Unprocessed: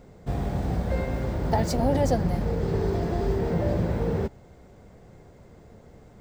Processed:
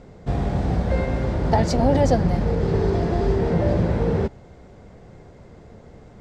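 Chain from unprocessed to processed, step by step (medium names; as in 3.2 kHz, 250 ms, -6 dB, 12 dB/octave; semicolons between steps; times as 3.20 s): low-pass 6.6 kHz 12 dB/octave; trim +5 dB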